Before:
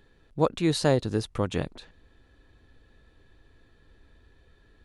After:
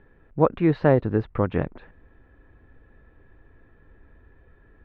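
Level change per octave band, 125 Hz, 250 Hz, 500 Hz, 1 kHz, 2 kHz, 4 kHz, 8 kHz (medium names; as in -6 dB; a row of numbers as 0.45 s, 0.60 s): +4.5 dB, +4.5 dB, +4.5 dB, +4.5 dB, +3.0 dB, under -15 dB, under -35 dB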